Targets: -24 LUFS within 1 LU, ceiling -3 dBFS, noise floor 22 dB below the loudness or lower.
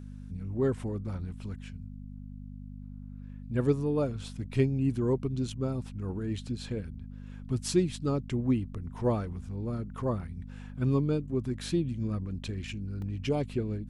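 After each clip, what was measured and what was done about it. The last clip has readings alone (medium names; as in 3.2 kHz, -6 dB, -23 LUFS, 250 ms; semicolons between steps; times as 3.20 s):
dropouts 1; longest dropout 1.9 ms; hum 50 Hz; highest harmonic 250 Hz; hum level -40 dBFS; loudness -32.0 LUFS; peak level -13.0 dBFS; loudness target -24.0 LUFS
-> interpolate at 13.02 s, 1.9 ms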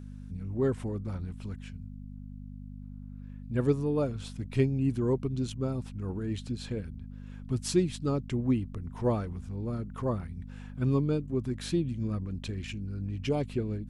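dropouts 0; hum 50 Hz; highest harmonic 250 Hz; hum level -40 dBFS
-> de-hum 50 Hz, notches 5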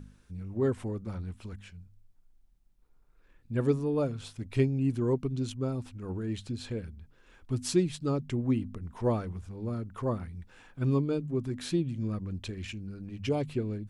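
hum not found; loudness -32.0 LUFS; peak level -13.5 dBFS; loudness target -24.0 LUFS
-> trim +8 dB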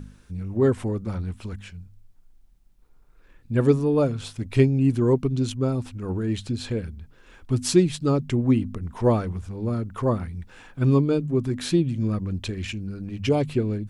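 loudness -24.5 LUFS; peak level -5.5 dBFS; noise floor -54 dBFS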